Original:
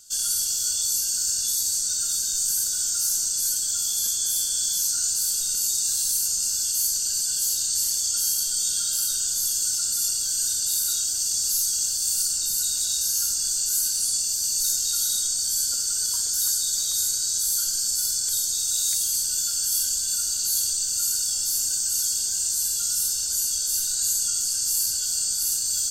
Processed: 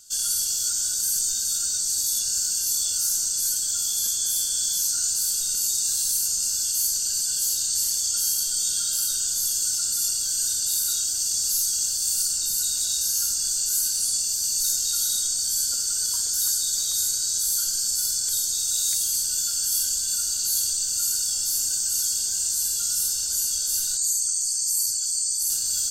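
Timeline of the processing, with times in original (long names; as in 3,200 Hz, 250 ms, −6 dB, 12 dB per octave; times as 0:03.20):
0:00.69–0:02.98: reverse
0:23.97–0:25.50: spectral envelope exaggerated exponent 1.5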